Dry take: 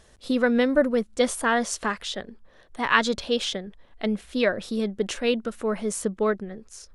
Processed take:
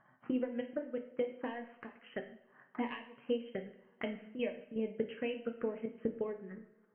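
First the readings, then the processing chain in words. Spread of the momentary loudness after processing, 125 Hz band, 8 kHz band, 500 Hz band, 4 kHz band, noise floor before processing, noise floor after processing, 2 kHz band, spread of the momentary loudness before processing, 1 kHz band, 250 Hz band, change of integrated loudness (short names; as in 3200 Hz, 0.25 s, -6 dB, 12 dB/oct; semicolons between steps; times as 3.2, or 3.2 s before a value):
12 LU, -14.0 dB, under -40 dB, -13.0 dB, -22.0 dB, -56 dBFS, -68 dBFS, -20.5 dB, 13 LU, -20.0 dB, -13.0 dB, -14.5 dB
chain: FFT band-pass 110–3200 Hz; low shelf 210 Hz -10.5 dB; transient shaper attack +7 dB, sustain -6 dB; compressor 16:1, threshold -30 dBFS, peak gain reduction 21.5 dB; envelope phaser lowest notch 450 Hz, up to 1400 Hz, full sweep at -30 dBFS; step gate "xxxxx.xx.x" 123 bpm -12 dB; flange 1.9 Hz, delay 7.1 ms, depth 1.8 ms, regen +72%; air absorption 350 m; two-slope reverb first 0.61 s, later 2.4 s, from -22 dB, DRR 5 dB; gain +4 dB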